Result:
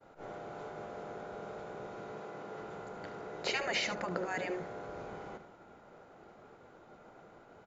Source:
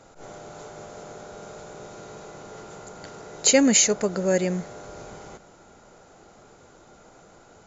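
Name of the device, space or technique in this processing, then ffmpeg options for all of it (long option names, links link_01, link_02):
hearing-loss simulation: -filter_complex "[0:a]asettb=1/sr,asplit=3[link_01][link_02][link_03];[link_01]atrim=end=2.124[link_04];[link_02]atrim=start=2.12:end=2.58,asetpts=PTS-STARTPTS,afade=type=in:duration=0.004:curve=qsin,afade=type=out:start_time=0.456:duration=0.004:curve=qsin,highpass=120[link_05];[link_03]atrim=start=2.576[link_06];[link_04][link_05]acrossfade=duration=0.004:curve1=hsin:curve2=qsin[link_07];[link_07][link_06]acrossfade=duration=0.004:curve1=qsin:curve2=hsin,afftfilt=real='re*lt(hypot(re,im),0.282)':imag='im*lt(hypot(re,im),0.282)':win_size=1024:overlap=0.75,lowpass=2600,lowshelf=frequency=75:gain=-10,agate=range=-33dB:threshold=-50dB:ratio=3:detection=peak,aecho=1:1:74:0.251,volume=-2.5dB"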